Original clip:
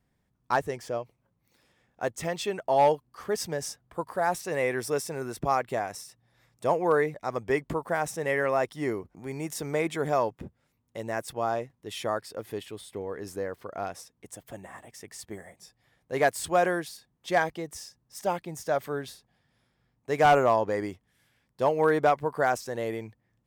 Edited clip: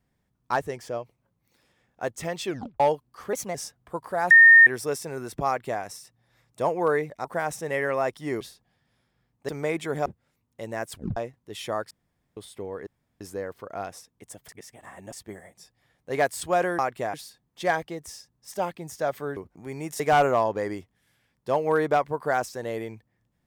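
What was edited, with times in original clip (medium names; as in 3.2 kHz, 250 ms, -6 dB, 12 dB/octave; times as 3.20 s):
2.46 s: tape stop 0.34 s
3.33–3.59 s: speed 120%
4.35–4.71 s: bleep 1.83 kHz -8.5 dBFS
5.51–5.86 s: copy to 16.81 s
7.29–7.80 s: delete
8.96–9.59 s: swap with 19.04–20.12 s
10.16–10.42 s: delete
11.28 s: tape stop 0.25 s
12.27–12.73 s: room tone
13.23 s: insert room tone 0.34 s
14.51–15.15 s: reverse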